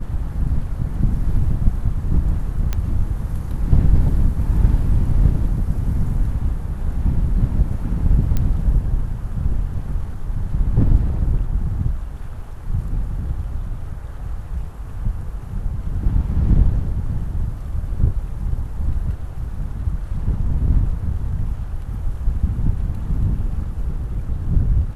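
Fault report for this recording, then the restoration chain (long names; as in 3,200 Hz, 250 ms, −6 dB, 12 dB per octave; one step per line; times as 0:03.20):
0:02.73: click −9 dBFS
0:08.37: click −9 dBFS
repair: click removal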